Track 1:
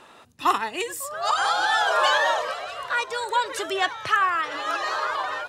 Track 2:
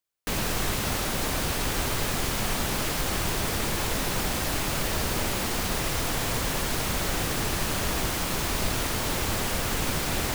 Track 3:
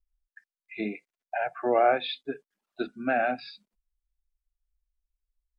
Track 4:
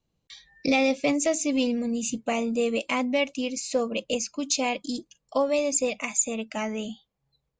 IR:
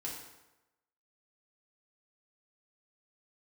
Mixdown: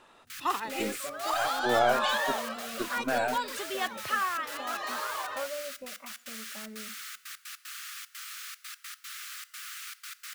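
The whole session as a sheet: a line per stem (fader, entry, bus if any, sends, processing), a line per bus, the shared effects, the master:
-8.5 dB, 0.00 s, no send, dry
-11.5 dB, 0.00 s, send -13 dB, steep high-pass 1200 Hz 96 dB/oct; step gate "xx.x.x.xxxx.xx" 151 bpm -24 dB
-2.5 dB, 0.00 s, no send, half-wave gain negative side -3 dB
-16.5 dB, 0.00 s, send -17.5 dB, synth low-pass 1400 Hz, resonance Q 1.7; comb 5.2 ms, depth 74%; noise-modulated level, depth 55%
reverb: on, RT60 1.0 s, pre-delay 3 ms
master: dry

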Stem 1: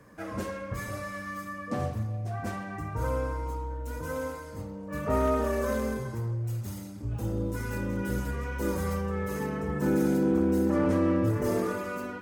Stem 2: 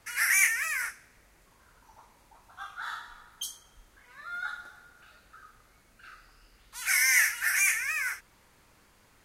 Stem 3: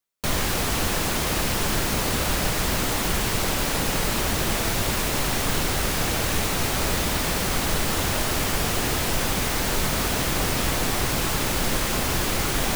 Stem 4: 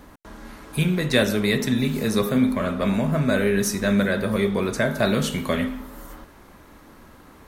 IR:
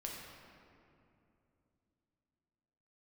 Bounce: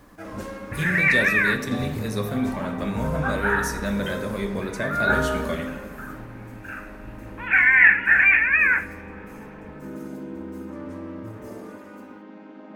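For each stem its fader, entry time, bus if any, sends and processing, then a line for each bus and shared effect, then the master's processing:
5.43 s -0.5 dB -> 5.7 s -12 dB, 0.00 s, no send, bit-crush 11-bit
-0.5 dB, 0.65 s, send -16.5 dB, steep low-pass 2600 Hz 48 dB/oct; AGC gain up to 13.5 dB; comb 1.2 ms, depth 41%
-16.0 dB, 0.00 s, no send, chord vocoder major triad, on G#3; LPF 1700 Hz 12 dB/oct
-9.5 dB, 0.00 s, send -3.5 dB, dry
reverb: on, RT60 2.8 s, pre-delay 7 ms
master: dry

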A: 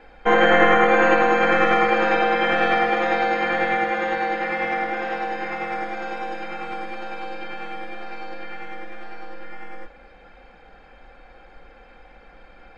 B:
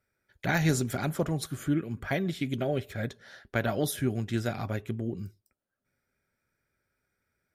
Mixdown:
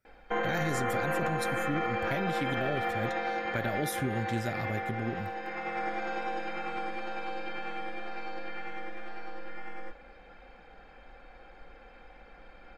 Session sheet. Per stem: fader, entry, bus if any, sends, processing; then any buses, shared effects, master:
-4.5 dB, 0.05 s, no send, auto duck -7 dB, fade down 0.45 s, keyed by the second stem
-1.5 dB, 0.00 s, no send, dry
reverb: off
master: limiter -21.5 dBFS, peak gain reduction 11 dB

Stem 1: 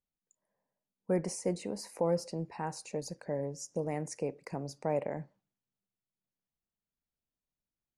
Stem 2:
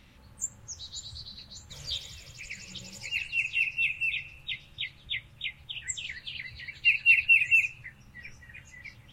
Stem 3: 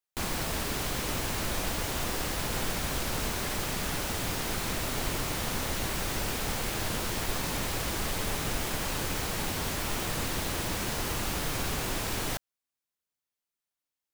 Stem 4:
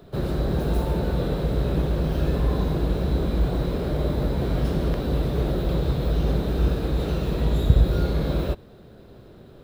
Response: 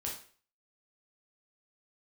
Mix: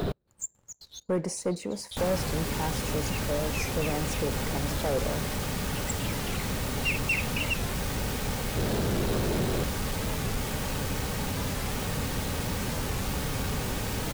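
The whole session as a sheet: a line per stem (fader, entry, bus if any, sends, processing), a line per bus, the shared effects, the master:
-2.5 dB, 0.00 s, no send, dry
-8.0 dB, 0.00 s, send -16.5 dB, tone controls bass -5 dB, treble +11 dB; step gate "...xx.xx.xx." 165 bpm -60 dB; high shelf 2300 Hz -11.5 dB; auto duck -6 dB, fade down 1.80 s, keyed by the first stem
-8.0 dB, 1.80 s, no send, low shelf 490 Hz +6.5 dB; notch comb 340 Hz
-4.5 dB, 0.00 s, no send, negative-ratio compressor -45 dBFS, ratio -0.5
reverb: on, RT60 0.45 s, pre-delay 7 ms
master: sample leveller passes 2; record warp 45 rpm, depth 160 cents

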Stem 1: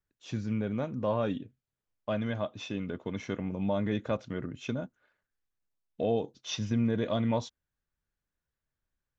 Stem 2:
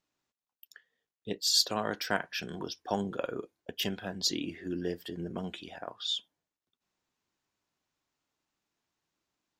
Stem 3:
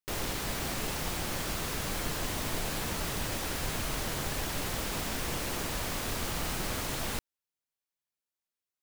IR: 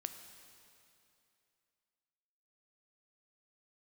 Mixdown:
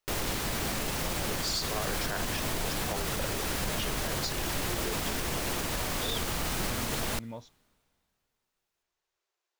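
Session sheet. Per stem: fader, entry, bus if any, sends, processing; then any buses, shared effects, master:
-13.0 dB, 0.00 s, no send, dry
-3.0 dB, 0.00 s, send -7 dB, Chebyshev high-pass 350 Hz, order 8
+2.5 dB, 0.00 s, send -18.5 dB, dry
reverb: on, RT60 2.7 s, pre-delay 5 ms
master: limiter -21.5 dBFS, peak gain reduction 10 dB

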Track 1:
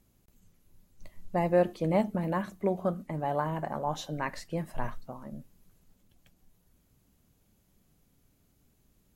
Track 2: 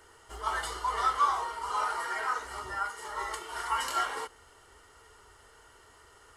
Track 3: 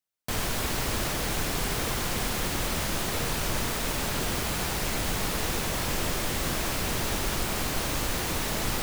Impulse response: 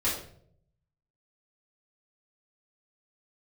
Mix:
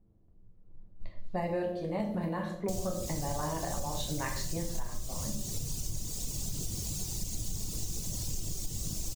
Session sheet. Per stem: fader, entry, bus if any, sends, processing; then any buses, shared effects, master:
-2.0 dB, 0.00 s, send -5.5 dB, random-step tremolo; low-pass opened by the level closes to 620 Hz, open at -33 dBFS; bell 4300 Hz +7.5 dB 0.77 oct
off
-1.0 dB, 2.40 s, send -15 dB, reverb removal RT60 1.5 s; EQ curve 140 Hz 0 dB, 1700 Hz -27 dB, 6800 Hz +5 dB, 10000 Hz -3 dB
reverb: on, RT60 0.65 s, pre-delay 3 ms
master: compressor 6:1, threshold -30 dBFS, peak gain reduction 13.5 dB

